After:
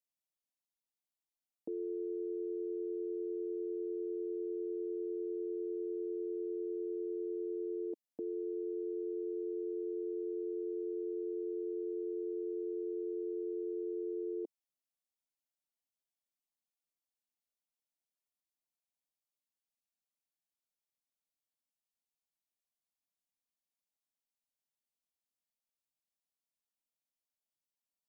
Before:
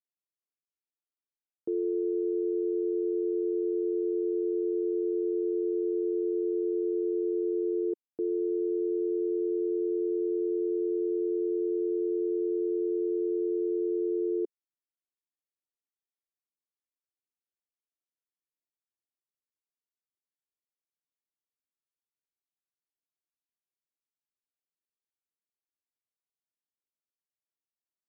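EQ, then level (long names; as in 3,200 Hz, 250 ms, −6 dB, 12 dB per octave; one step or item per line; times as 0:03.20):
phaser with its sweep stopped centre 390 Hz, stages 6
0.0 dB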